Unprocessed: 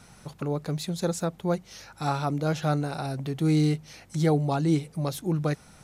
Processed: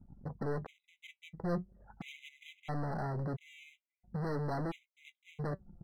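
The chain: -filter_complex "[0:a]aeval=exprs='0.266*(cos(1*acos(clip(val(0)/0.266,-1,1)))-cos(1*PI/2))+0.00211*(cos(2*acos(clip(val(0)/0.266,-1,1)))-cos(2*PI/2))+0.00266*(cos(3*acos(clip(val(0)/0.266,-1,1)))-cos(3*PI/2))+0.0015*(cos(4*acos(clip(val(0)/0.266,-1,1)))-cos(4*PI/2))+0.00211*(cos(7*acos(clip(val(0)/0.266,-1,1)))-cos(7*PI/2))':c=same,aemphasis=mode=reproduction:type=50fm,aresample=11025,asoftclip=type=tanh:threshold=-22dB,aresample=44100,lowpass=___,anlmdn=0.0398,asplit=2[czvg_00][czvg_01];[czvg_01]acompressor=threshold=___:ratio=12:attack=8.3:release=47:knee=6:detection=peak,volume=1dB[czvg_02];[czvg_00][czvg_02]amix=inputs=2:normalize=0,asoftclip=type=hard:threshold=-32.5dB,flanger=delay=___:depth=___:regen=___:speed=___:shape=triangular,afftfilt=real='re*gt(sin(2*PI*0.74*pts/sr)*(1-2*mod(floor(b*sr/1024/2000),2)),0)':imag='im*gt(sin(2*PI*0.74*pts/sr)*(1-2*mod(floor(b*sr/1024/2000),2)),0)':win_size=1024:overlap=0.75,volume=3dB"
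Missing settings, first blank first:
1100, -36dB, 3.2, 3.5, 69, 0.41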